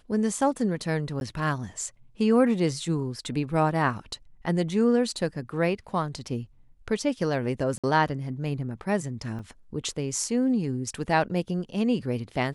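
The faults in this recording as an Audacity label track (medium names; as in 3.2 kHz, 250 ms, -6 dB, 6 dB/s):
1.200000	1.210000	dropout 11 ms
7.780000	7.840000	dropout 56 ms
9.390000	9.390000	dropout 2.1 ms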